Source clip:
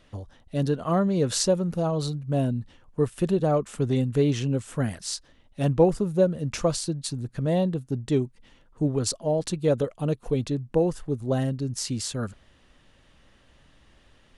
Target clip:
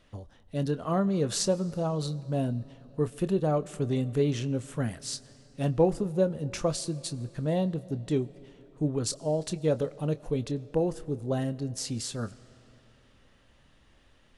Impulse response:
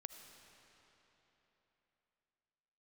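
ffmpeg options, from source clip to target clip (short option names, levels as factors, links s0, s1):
-filter_complex "[0:a]asplit=2[s0][s1];[1:a]atrim=start_sample=2205,adelay=26[s2];[s1][s2]afir=irnorm=-1:irlink=0,volume=0.398[s3];[s0][s3]amix=inputs=2:normalize=0,volume=0.631"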